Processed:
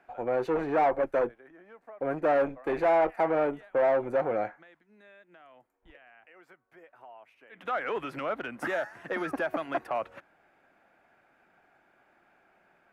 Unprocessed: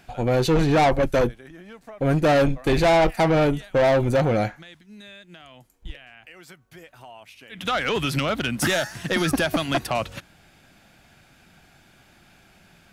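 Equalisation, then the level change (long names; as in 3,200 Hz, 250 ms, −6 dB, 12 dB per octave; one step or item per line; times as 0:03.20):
three-way crossover with the lows and the highs turned down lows −21 dB, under 320 Hz, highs −21 dB, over 2,500 Hz
parametric band 3,500 Hz −7.5 dB 1.2 octaves
−4.5 dB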